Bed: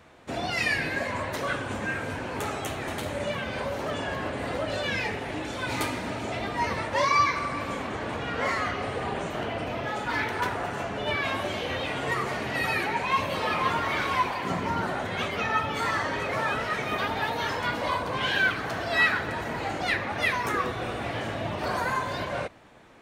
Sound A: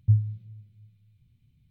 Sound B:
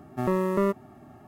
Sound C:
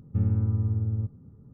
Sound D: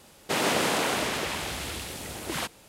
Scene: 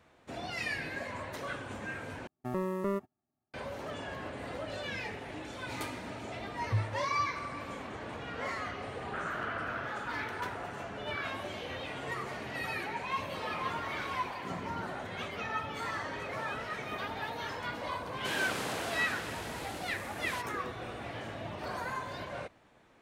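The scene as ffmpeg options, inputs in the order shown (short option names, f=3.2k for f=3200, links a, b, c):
-filter_complex "[4:a]asplit=2[a][b];[0:a]volume=-9.5dB[c];[2:a]agate=range=-30dB:threshold=-44dB:ratio=16:release=100:detection=peak[d];[a]asuperpass=centerf=1400:order=4:qfactor=3.1[e];[c]asplit=2[f][g];[f]atrim=end=2.274[h];[d]atrim=end=1.27,asetpts=PTS-STARTPTS,volume=-8.5dB[i];[g]atrim=start=3.536[j];[1:a]atrim=end=1.7,asetpts=PTS-STARTPTS,volume=-10.5dB,afade=t=in:d=0.004:c=hsin,afade=t=out:st=1.696:d=0.004:c=hsin,adelay=6640[k];[e]atrim=end=2.68,asetpts=PTS-STARTPTS,volume=-2.5dB,afade=t=in:d=0.004:c=hsin,afade=t=out:st=2.676:d=0.004:c=hsin,adelay=8830[l];[b]atrim=end=2.68,asetpts=PTS-STARTPTS,volume=-11.5dB,afade=t=in:d=0.004:c=hsin,afade=t=out:st=2.676:d=0.004:c=hsin,adelay=17950[m];[h][i]acrossfade=d=0.004:c1=hsin:c2=hsin[n];[n][j]acrossfade=d=0.004:c1=hsin:c2=hsin[o];[o][k][l][m]amix=inputs=4:normalize=0"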